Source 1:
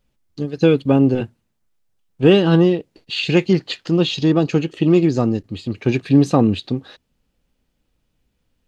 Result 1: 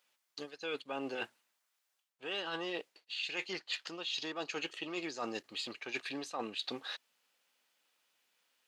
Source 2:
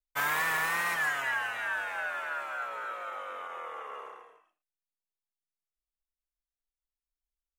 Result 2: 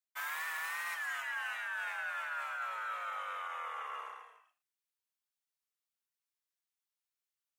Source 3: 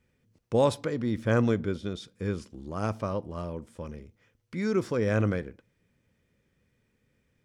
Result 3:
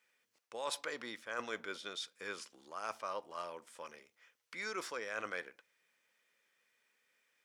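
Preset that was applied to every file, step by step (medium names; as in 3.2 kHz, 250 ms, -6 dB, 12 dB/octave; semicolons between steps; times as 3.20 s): high-pass 1 kHz 12 dB/octave; reverse; compression 16:1, threshold -38 dBFS; reverse; trim +2.5 dB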